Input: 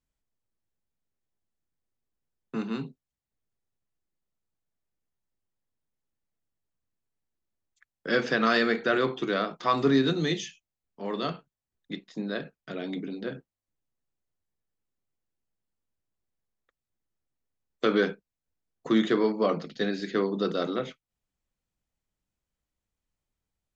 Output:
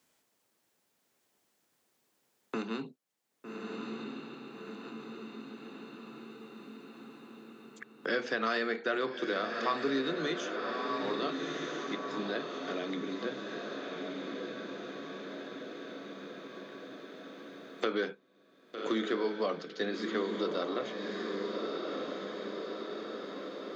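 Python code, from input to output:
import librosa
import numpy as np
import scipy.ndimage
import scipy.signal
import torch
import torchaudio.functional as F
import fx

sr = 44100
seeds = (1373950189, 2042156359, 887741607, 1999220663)

y = scipy.signal.sosfilt(scipy.signal.butter(2, 280.0, 'highpass', fs=sr, output='sos'), x)
y = fx.echo_diffused(y, sr, ms=1225, feedback_pct=42, wet_db=-7.0)
y = fx.band_squash(y, sr, depth_pct=70)
y = y * librosa.db_to_amplitude(-3.5)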